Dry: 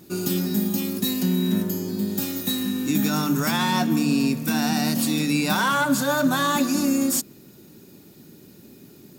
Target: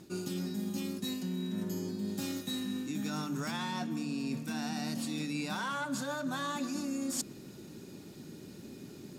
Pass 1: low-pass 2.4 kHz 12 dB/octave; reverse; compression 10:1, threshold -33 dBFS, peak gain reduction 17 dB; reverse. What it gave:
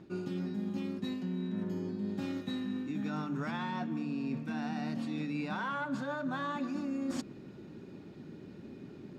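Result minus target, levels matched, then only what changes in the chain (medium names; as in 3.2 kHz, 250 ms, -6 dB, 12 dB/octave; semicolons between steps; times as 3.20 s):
8 kHz band -16.0 dB
change: low-pass 9 kHz 12 dB/octave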